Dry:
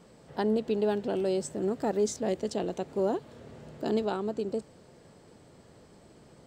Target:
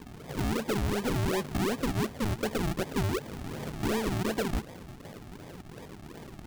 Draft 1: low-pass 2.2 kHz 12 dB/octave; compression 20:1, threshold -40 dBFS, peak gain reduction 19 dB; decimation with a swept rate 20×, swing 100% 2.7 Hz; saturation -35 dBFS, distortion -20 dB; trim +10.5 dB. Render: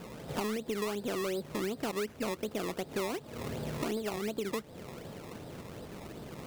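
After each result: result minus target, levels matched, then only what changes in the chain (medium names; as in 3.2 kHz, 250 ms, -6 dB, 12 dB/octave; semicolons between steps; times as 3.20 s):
decimation with a swept rate: distortion -21 dB; compression: peak gain reduction +8.5 dB
change: decimation with a swept rate 61×, swing 100% 2.7 Hz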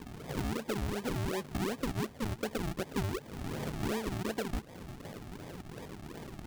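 compression: peak gain reduction +8.5 dB
change: compression 20:1, threshold -31 dBFS, peak gain reduction 10 dB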